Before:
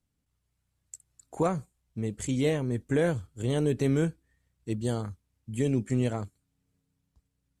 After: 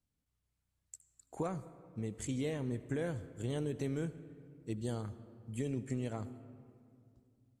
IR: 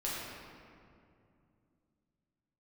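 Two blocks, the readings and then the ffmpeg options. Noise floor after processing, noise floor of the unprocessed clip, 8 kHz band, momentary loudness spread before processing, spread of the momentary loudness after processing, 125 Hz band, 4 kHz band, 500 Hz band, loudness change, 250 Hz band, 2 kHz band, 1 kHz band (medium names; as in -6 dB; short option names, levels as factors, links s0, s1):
-85 dBFS, -80 dBFS, -7.5 dB, 20 LU, 18 LU, -9.5 dB, -9.5 dB, -10.5 dB, -10.0 dB, -9.5 dB, -10.5 dB, -10.0 dB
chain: -filter_complex "[0:a]acompressor=threshold=0.0501:ratio=6,asplit=2[s0][s1];[1:a]atrim=start_sample=2205,adelay=75[s2];[s1][s2]afir=irnorm=-1:irlink=0,volume=0.112[s3];[s0][s3]amix=inputs=2:normalize=0,volume=0.473"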